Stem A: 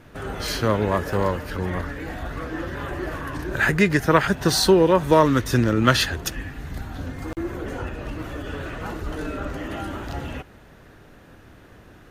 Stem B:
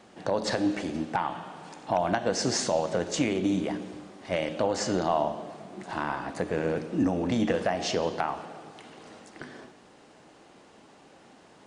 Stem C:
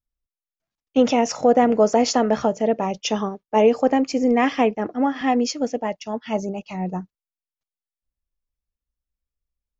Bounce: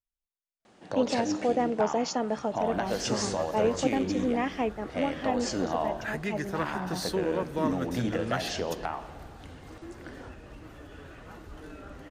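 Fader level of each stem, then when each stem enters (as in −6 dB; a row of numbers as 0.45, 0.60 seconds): −15.0, −4.5, −10.5 decibels; 2.45, 0.65, 0.00 seconds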